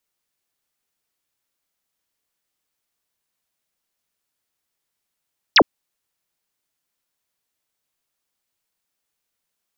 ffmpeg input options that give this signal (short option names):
-f lavfi -i "aevalsrc='0.422*clip(t/0.002,0,1)*clip((0.06-t)/0.002,0,1)*sin(2*PI*6200*0.06/log(210/6200)*(exp(log(210/6200)*t/0.06)-1))':d=0.06:s=44100"